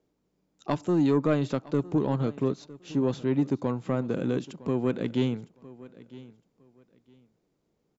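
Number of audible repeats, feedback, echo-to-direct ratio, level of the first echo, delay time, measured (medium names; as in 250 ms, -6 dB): 2, 22%, -19.5 dB, -19.5 dB, 959 ms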